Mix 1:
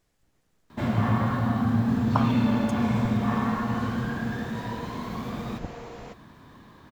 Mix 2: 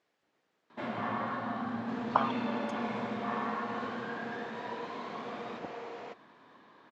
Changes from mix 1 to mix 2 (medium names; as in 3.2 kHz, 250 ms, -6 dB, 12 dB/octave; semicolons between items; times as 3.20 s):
first sound -4.5 dB; master: add band-pass 350–3800 Hz